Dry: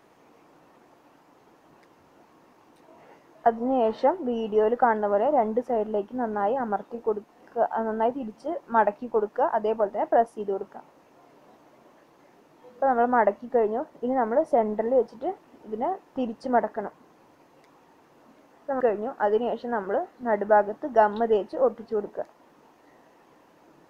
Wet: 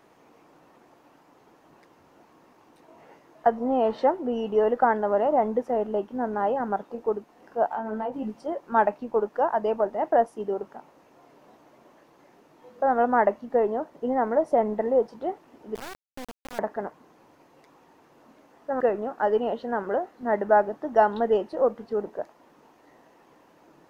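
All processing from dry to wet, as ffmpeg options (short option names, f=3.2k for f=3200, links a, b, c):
-filter_complex "[0:a]asettb=1/sr,asplit=3[a][b][c];[a]atrim=end=7.694[d];[b]atrim=start=7.69:end=8.4,asetpts=PTS-STARTPTS,afade=t=in:d=0.004:c=qsin,afade=t=out:st=0.706:d=0.004:c=qsin,acompressor=threshold=-28dB:ratio=5:attack=3.2:release=140:knee=1:detection=peak,asplit=2[e][f];[f]adelay=19,volume=-3.5dB[g];[e][g]amix=inputs=2:normalize=0,atrim=end_sample=31311[h];[c]atrim=start=8.396[i];[d][h]acrossfade=d=0.004:c1=hsin:c2=qsin[j];[j][i]acrossfade=d=0.004:c1=qsin:c2=hsin,asettb=1/sr,asplit=3[k][l][m];[k]atrim=end=15.754[n];[l]atrim=start=15.75:end=16.59,asetpts=PTS-STARTPTS,afade=t=in:d=0.004:c=qsin,afade=t=out:st=0.836:d=0.004:c=qsin,lowshelf=f=150:g=9,acompressor=threshold=-36dB:ratio=5:attack=3.2:release=140:knee=1:detection=peak,acrusher=bits=3:dc=4:mix=0:aa=0.000001[o];[m]atrim=start=16.586[p];[n][o]acrossfade=d=0.004:c1=hsin:c2=qsin[q];[q][p]acrossfade=d=0.004:c1=qsin:c2=hsin"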